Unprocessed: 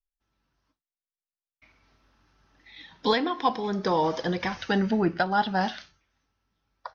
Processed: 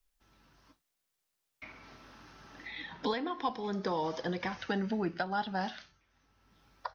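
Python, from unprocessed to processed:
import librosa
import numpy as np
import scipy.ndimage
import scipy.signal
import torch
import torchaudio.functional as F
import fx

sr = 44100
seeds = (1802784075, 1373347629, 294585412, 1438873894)

y = fx.band_squash(x, sr, depth_pct=70)
y = y * 10.0 ** (-8.5 / 20.0)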